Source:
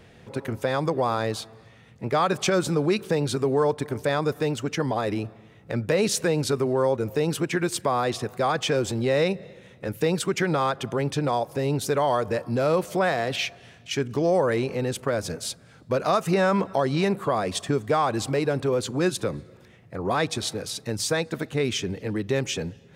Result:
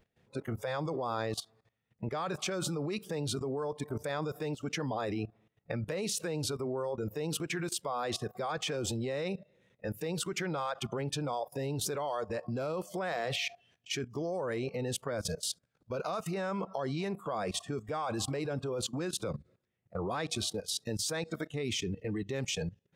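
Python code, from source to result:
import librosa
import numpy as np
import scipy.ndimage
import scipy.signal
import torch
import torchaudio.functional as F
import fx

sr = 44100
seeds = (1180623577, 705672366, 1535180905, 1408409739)

y = fx.noise_reduce_blind(x, sr, reduce_db=17)
y = fx.level_steps(y, sr, step_db=17)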